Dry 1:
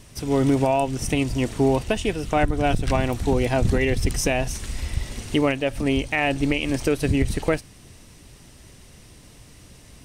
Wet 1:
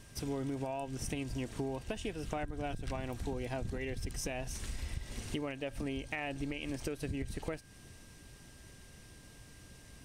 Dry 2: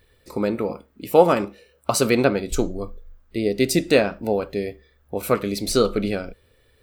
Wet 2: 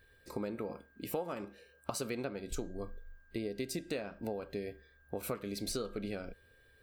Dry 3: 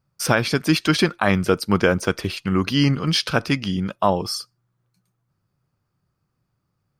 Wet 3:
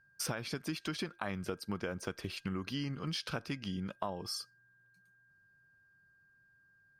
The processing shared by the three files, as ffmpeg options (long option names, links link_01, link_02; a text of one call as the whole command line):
ffmpeg -i in.wav -af "acompressor=threshold=-27dB:ratio=8,aeval=exprs='val(0)+0.00126*sin(2*PI*1600*n/s)':channel_layout=same,volume=-7.5dB" out.wav